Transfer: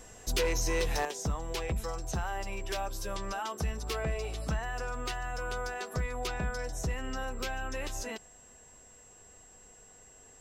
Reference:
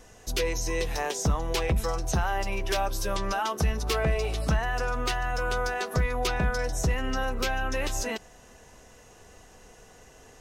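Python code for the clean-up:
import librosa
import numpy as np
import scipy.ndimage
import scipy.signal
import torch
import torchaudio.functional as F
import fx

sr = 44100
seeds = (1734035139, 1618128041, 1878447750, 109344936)

y = fx.fix_declip(x, sr, threshold_db=-24.0)
y = fx.notch(y, sr, hz=7600.0, q=30.0)
y = fx.fix_level(y, sr, at_s=1.05, step_db=7.5)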